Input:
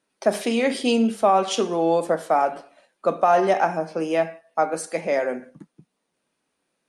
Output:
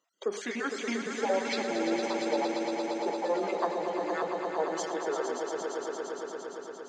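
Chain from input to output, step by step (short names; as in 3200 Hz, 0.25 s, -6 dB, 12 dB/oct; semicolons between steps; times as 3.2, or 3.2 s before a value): random spectral dropouts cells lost 29%; HPF 900 Hz 6 dB/oct; in parallel at +0.5 dB: compressor, threshold -41 dBFS, peak gain reduction 21.5 dB; on the sum: formant shift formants -6 st; on a send: swelling echo 0.115 s, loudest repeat 5, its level -8 dB; on the sum: gain -7 dB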